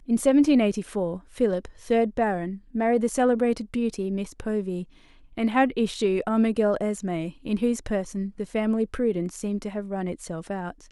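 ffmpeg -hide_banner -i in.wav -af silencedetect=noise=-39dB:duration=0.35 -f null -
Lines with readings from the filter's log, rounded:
silence_start: 4.84
silence_end: 5.37 | silence_duration: 0.54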